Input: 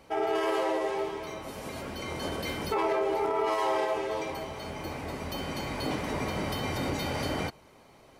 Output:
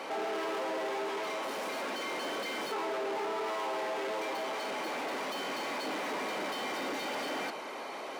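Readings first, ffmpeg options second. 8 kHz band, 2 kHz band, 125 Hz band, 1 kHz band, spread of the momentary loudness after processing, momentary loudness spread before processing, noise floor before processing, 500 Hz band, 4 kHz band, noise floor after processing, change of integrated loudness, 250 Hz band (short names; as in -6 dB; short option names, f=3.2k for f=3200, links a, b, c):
-1.0 dB, +0.5 dB, -21.0 dB, -3.0 dB, 2 LU, 10 LU, -56 dBFS, -5.0 dB, -0.5 dB, -41 dBFS, -3.5 dB, -6.5 dB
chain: -filter_complex "[0:a]acrossover=split=340[a][b];[b]acompressor=threshold=-31dB:ratio=6[c];[a][c]amix=inputs=2:normalize=0,asplit=2[d][e];[e]highpass=f=720:p=1,volume=37dB,asoftclip=type=tanh:threshold=-20.5dB[f];[d][f]amix=inputs=2:normalize=0,lowpass=f=2.5k:p=1,volume=-6dB,highpass=f=220:w=0.5412,highpass=f=220:w=1.3066,volume=-8dB"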